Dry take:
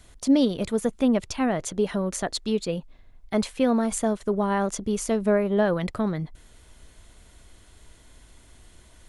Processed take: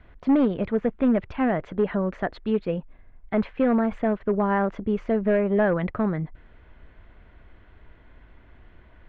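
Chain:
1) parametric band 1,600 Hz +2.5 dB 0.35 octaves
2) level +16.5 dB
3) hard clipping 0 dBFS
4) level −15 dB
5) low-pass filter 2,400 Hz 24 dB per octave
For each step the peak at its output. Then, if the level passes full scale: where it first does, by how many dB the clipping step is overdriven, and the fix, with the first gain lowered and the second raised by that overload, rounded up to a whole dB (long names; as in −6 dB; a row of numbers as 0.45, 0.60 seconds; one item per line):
−10.0, +6.5, 0.0, −15.0, −14.0 dBFS
step 2, 6.5 dB
step 2 +9.5 dB, step 4 −8 dB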